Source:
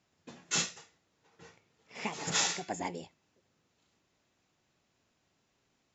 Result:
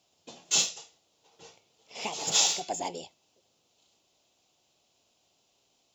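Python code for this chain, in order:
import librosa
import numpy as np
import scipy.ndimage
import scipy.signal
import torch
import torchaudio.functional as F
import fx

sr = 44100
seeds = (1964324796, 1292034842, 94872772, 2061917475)

p1 = fx.curve_eq(x, sr, hz=(200.0, 720.0, 1800.0, 3000.0), db=(0, 11, -4, 13))
p2 = np.clip(p1, -10.0 ** (-28.5 / 20.0), 10.0 ** (-28.5 / 20.0))
p3 = p1 + F.gain(torch.from_numpy(p2), -10.0).numpy()
y = F.gain(torch.from_numpy(p3), -6.5).numpy()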